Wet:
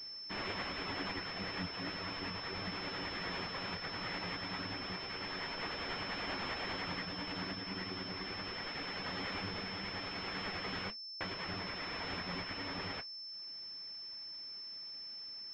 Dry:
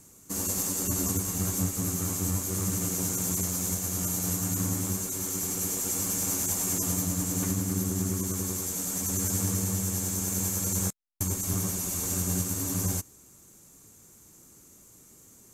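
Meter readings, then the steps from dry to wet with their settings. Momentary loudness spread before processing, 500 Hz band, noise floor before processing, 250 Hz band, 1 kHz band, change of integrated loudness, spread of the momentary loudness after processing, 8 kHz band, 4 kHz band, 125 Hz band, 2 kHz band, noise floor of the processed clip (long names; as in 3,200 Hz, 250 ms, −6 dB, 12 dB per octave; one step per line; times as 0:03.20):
3 LU, −6.0 dB, −55 dBFS, −13.0 dB, +0.5 dB, −12.0 dB, 5 LU, −39.0 dB, +2.0 dB, −17.5 dB, +5.5 dB, −47 dBFS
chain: reverb reduction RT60 0.84 s
high-pass filter 530 Hz 6 dB per octave
flanger 1.9 Hz, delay 9.3 ms, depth 9.3 ms, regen +50%
switching amplifier with a slow clock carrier 5,300 Hz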